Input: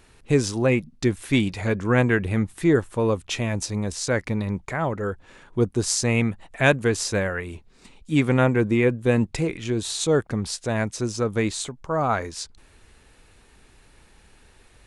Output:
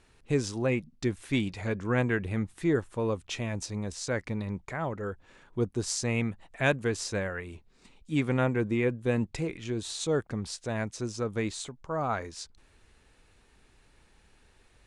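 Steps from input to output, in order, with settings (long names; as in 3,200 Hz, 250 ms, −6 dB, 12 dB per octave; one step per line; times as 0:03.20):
low-pass filter 9,600 Hz 12 dB per octave
level −7.5 dB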